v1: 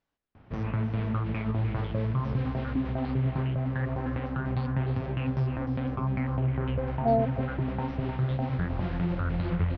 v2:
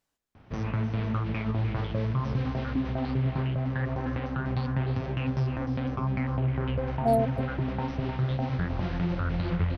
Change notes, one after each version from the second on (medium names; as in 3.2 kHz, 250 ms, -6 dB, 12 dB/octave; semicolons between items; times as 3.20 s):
master: remove distance through air 190 m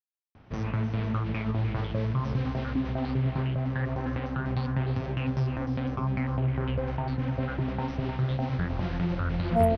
speech: entry +2.50 s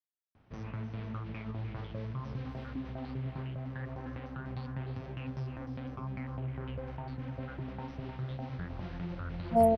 background -10.5 dB